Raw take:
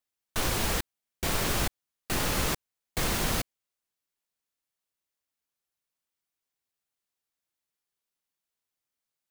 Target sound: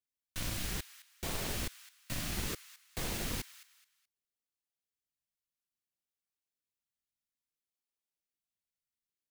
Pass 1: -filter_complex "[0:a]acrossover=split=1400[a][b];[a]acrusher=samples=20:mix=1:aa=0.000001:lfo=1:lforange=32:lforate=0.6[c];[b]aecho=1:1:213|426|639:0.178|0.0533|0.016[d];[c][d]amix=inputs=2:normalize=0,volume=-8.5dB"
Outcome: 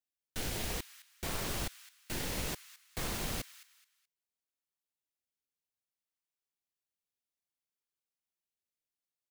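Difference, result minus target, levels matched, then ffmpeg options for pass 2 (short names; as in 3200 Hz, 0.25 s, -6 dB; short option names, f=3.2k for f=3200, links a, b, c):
decimation with a swept rate: distortion -5 dB
-filter_complex "[0:a]acrossover=split=1400[a][b];[a]acrusher=samples=59:mix=1:aa=0.000001:lfo=1:lforange=94.4:lforate=0.6[c];[b]aecho=1:1:213|426|639:0.178|0.0533|0.016[d];[c][d]amix=inputs=2:normalize=0,volume=-8.5dB"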